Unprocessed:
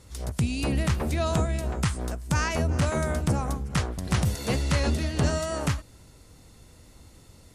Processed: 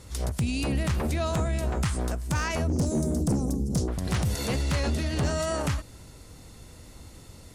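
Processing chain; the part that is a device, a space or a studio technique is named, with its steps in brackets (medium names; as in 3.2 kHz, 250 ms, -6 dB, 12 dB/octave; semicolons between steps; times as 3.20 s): 2.68–3.88 s: FFT filter 120 Hz 0 dB, 180 Hz +7 dB, 330 Hz +9 dB, 1.6 kHz -24 dB, 2.4 kHz -21 dB, 5.4 kHz +3 dB; clipper into limiter (hard clipper -18 dBFS, distortion -15 dB; peak limiter -24.5 dBFS, peak gain reduction 6.5 dB); trim +4.5 dB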